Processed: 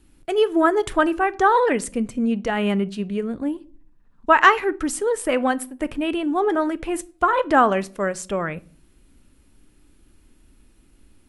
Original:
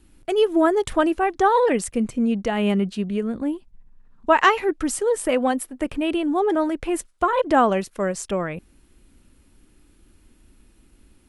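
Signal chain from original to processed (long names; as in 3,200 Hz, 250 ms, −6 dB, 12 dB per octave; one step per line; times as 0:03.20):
rectangular room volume 430 cubic metres, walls furnished, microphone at 0.32 metres
dynamic equaliser 1,500 Hz, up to +6 dB, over −35 dBFS, Q 1.3
level −1 dB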